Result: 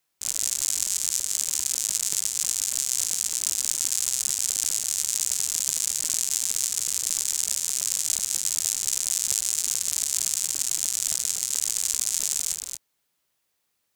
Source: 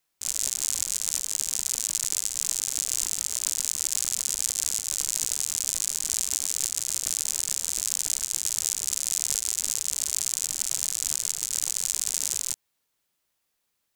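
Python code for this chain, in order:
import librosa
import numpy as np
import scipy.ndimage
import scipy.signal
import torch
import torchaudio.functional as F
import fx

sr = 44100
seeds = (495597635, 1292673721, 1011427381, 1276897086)

y = scipy.signal.sosfilt(scipy.signal.butter(2, 40.0, 'highpass', fs=sr, output='sos'), x)
y = y + 10.0 ** (-6.0 / 20.0) * np.pad(y, (int(227 * sr / 1000.0), 0))[:len(y)]
y = y * librosa.db_to_amplitude(1.0)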